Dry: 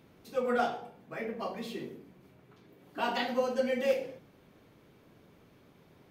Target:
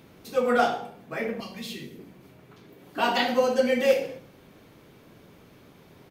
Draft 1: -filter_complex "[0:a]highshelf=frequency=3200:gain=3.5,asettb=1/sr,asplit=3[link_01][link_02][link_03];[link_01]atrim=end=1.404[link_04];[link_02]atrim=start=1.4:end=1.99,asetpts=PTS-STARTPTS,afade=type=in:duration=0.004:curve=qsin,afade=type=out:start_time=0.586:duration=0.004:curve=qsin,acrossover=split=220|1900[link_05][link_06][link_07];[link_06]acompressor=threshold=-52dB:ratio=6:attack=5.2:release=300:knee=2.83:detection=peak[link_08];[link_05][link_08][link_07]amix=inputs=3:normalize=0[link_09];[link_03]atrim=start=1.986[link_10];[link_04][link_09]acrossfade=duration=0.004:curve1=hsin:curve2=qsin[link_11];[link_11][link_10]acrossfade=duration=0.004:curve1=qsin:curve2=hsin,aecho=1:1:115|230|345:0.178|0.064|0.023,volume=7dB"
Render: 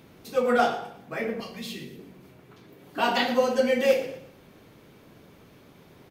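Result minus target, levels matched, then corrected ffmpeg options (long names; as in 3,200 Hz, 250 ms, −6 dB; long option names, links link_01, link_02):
echo 46 ms late
-filter_complex "[0:a]highshelf=frequency=3200:gain=3.5,asettb=1/sr,asplit=3[link_01][link_02][link_03];[link_01]atrim=end=1.404[link_04];[link_02]atrim=start=1.4:end=1.99,asetpts=PTS-STARTPTS,afade=type=in:duration=0.004:curve=qsin,afade=type=out:start_time=0.586:duration=0.004:curve=qsin,acrossover=split=220|1900[link_05][link_06][link_07];[link_06]acompressor=threshold=-52dB:ratio=6:attack=5.2:release=300:knee=2.83:detection=peak[link_08];[link_05][link_08][link_07]amix=inputs=3:normalize=0[link_09];[link_03]atrim=start=1.986[link_10];[link_04][link_09]acrossfade=duration=0.004:curve1=hsin:curve2=qsin[link_11];[link_11][link_10]acrossfade=duration=0.004:curve1=qsin:curve2=hsin,aecho=1:1:69|138|207:0.178|0.064|0.023,volume=7dB"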